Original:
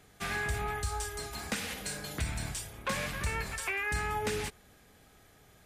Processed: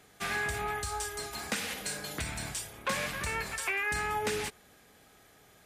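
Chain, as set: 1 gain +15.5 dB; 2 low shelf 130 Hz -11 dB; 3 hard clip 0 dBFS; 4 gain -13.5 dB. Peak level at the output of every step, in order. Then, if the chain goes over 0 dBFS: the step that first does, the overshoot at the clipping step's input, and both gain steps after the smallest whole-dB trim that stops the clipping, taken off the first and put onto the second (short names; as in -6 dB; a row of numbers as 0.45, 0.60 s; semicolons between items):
-5.0, -4.0, -4.0, -17.5 dBFS; no overload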